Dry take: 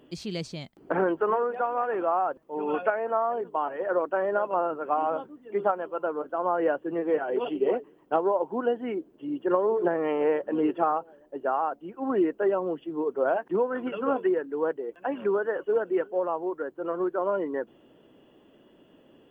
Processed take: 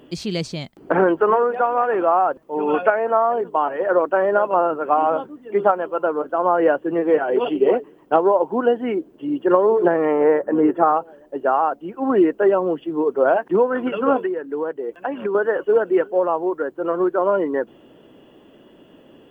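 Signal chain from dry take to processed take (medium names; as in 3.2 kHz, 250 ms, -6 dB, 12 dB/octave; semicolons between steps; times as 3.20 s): 10.05–10.88 s: high-order bell 3.6 kHz -12 dB 1.3 oct; 14.24–15.35 s: compression 6:1, threshold -30 dBFS, peak gain reduction 9.5 dB; trim +8.5 dB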